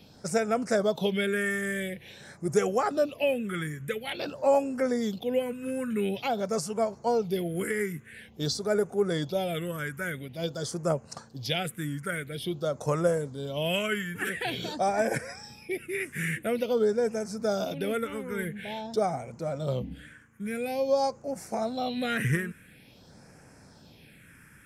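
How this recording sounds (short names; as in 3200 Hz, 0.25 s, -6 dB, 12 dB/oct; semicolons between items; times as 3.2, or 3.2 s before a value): phasing stages 4, 0.48 Hz, lowest notch 670–3500 Hz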